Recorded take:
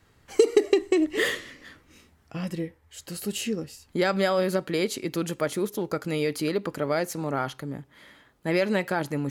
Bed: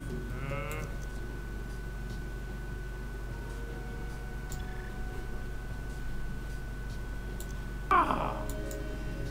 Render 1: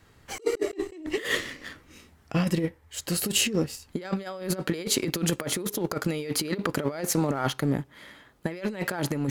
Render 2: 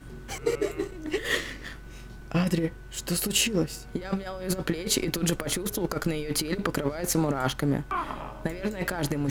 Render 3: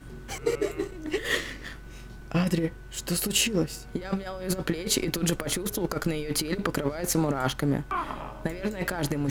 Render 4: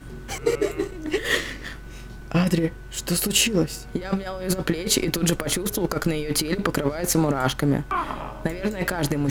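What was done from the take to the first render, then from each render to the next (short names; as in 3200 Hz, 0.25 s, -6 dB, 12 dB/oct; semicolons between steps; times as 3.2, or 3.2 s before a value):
sample leveller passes 1; negative-ratio compressor -27 dBFS, ratio -0.5
add bed -5.5 dB
nothing audible
gain +4.5 dB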